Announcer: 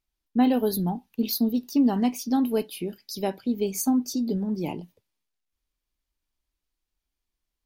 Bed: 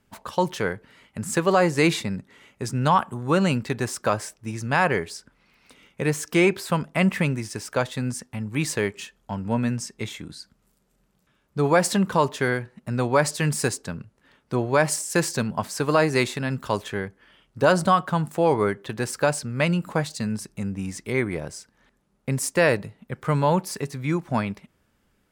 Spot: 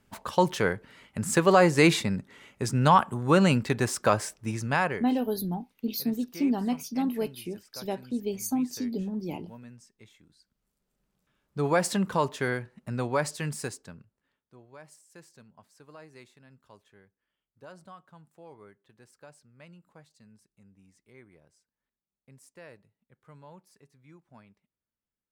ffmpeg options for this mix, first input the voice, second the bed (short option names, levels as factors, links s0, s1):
-filter_complex "[0:a]adelay=4650,volume=0.562[s0];[1:a]volume=7.5,afade=t=out:st=4.5:d=0.62:silence=0.0707946,afade=t=in:st=10.38:d=1.31:silence=0.133352,afade=t=out:st=12.83:d=1.67:silence=0.0630957[s1];[s0][s1]amix=inputs=2:normalize=0"